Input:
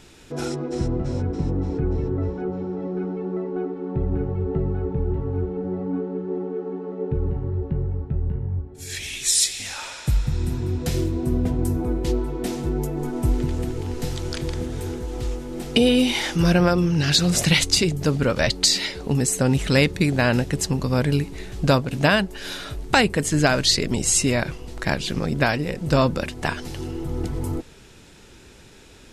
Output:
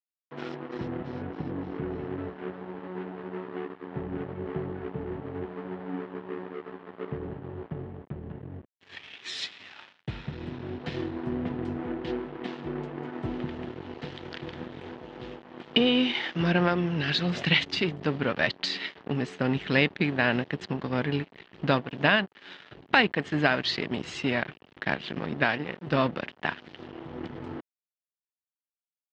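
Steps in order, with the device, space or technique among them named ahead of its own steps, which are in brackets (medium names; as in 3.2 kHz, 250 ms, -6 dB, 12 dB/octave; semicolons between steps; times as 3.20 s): blown loudspeaker (crossover distortion -31 dBFS; cabinet simulation 160–3700 Hz, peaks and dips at 530 Hz -3 dB, 1.8 kHz +5 dB, 3 kHz +4 dB); trim -3.5 dB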